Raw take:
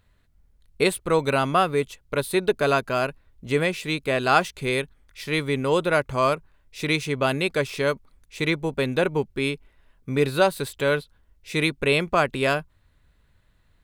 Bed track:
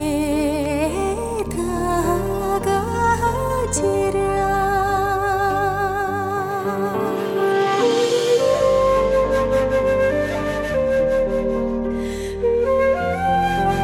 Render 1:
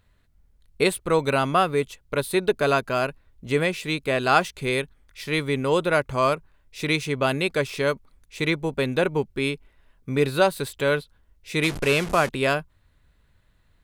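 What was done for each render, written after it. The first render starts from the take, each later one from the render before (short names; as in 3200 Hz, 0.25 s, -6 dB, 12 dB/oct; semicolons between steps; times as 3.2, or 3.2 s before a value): 11.63–12.29 delta modulation 64 kbps, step -26.5 dBFS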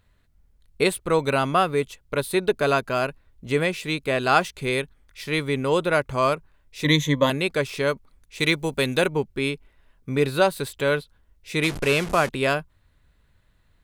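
6.84–7.3 ripple EQ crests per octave 1.1, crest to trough 17 dB; 8.4–9.08 high shelf 3200 Hz +11 dB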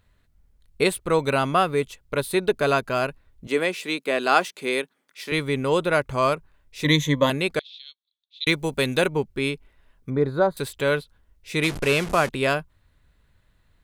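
3.47–5.32 HPF 220 Hz 24 dB/oct; 7.59–8.47 Butterworth band-pass 3700 Hz, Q 4.5; 10.1–10.57 running mean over 16 samples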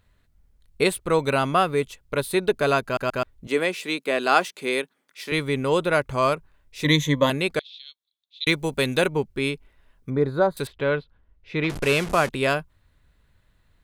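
2.84 stutter in place 0.13 s, 3 plays; 10.67–11.7 air absorption 290 m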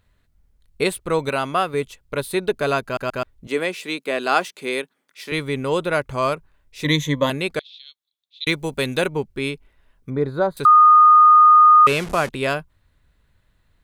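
1.29–1.74 low shelf 220 Hz -7.5 dB; 10.65–11.87 bleep 1230 Hz -7 dBFS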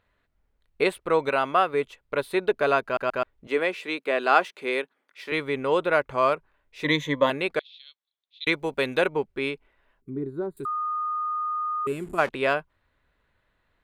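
10.01–12.18 spectral gain 410–6800 Hz -18 dB; tone controls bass -12 dB, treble -14 dB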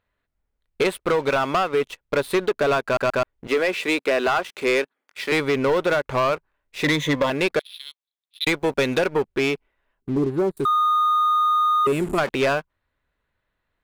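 compressor 10:1, threshold -24 dBFS, peak gain reduction 12 dB; sample leveller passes 3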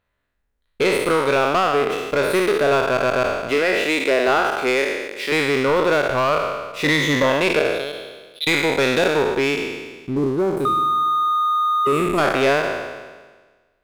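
spectral trails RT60 1.41 s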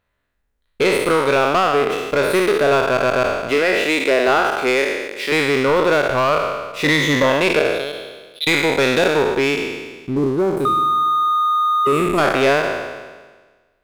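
gain +2 dB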